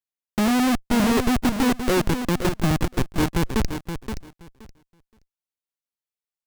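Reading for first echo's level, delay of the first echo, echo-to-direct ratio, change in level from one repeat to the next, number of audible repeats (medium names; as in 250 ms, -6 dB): -8.5 dB, 523 ms, -8.5 dB, -15.5 dB, 2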